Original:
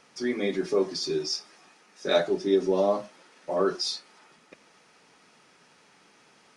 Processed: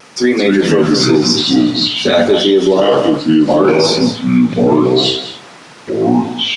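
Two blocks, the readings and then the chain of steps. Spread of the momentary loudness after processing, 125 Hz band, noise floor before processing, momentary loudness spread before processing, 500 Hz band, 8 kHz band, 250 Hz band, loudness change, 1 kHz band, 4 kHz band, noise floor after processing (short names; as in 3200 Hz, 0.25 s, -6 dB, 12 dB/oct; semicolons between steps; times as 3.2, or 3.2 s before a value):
4 LU, +24.5 dB, -60 dBFS, 8 LU, +15.0 dB, +16.5 dB, +22.0 dB, +15.5 dB, +16.5 dB, +20.0 dB, -38 dBFS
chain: vibrato 0.49 Hz 15 cents; echoes that change speed 0.178 s, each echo -4 st, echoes 2; on a send: echo 0.201 s -13 dB; on the sum: maximiser +19.5 dB; gain -1 dB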